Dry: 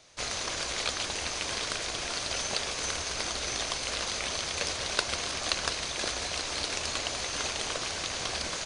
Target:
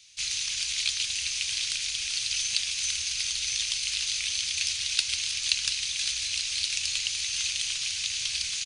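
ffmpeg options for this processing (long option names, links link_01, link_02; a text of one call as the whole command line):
ffmpeg -i in.wav -af "firequalizer=gain_entry='entry(110,0);entry(350,-26);entry(2500,13)':delay=0.05:min_phase=1,volume=-8dB" out.wav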